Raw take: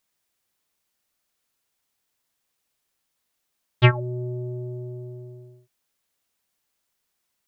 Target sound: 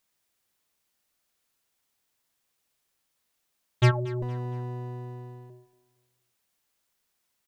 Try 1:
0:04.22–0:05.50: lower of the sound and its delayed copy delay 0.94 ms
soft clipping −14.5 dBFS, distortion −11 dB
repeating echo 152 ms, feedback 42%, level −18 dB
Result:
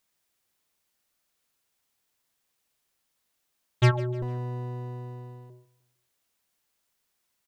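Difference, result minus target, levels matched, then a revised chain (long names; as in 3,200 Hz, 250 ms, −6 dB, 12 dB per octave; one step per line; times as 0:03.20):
echo 80 ms early
0:04.22–0:05.50: lower of the sound and its delayed copy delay 0.94 ms
soft clipping −14.5 dBFS, distortion −11 dB
repeating echo 232 ms, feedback 42%, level −18 dB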